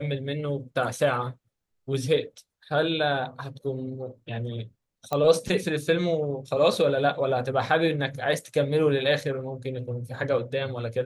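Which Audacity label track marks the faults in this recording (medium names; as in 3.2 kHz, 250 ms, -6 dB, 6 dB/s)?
5.130000	5.130000	pop -14 dBFS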